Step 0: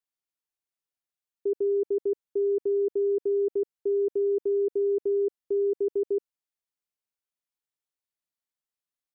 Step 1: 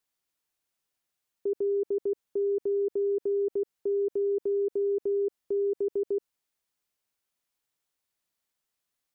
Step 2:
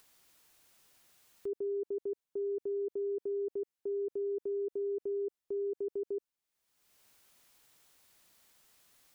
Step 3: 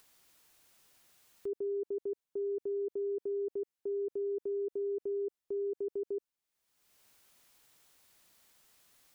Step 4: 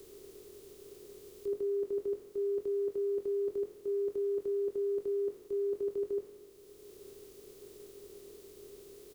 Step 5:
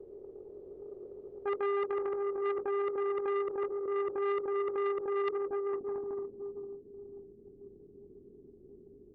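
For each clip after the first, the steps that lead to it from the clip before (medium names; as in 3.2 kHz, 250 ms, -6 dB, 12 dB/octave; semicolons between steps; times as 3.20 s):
peak limiter -32 dBFS, peak gain reduction 11 dB; trim +8.5 dB
upward compressor, threshold -38 dBFS; trim -7.5 dB
no audible change
spectral levelling over time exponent 0.2; doubling 22 ms -7 dB; three bands expanded up and down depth 70%
low-pass sweep 570 Hz -> 240 Hz, 5.12–5.65 s; echo that smears into a reverb 481 ms, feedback 44%, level -4.5 dB; transformer saturation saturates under 1.2 kHz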